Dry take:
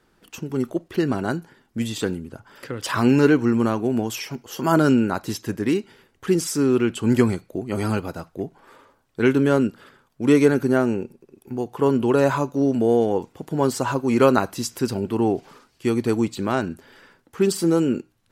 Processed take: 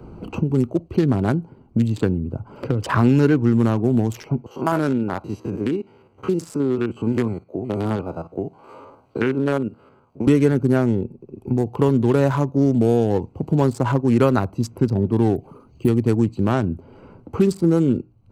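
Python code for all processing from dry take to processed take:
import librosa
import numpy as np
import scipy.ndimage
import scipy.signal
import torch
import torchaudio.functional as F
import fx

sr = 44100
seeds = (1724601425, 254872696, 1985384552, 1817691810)

y = fx.chain(x, sr, fx.spec_steps(hold_ms=50),
    fx.highpass(hz=730.0, slope=6), at=(4.46, 10.27))
y = fx.chain(y, sr, fx.envelope_sharpen(power=1.5),
    fx.resample_bad(factor=4, down='filtered', up='hold'), at=(15.36, 15.88))
y = fx.wiener(y, sr, points=25)
y = fx.peak_eq(y, sr, hz=84.0, db=12.5, octaves=1.9)
y = fx.band_squash(y, sr, depth_pct=70)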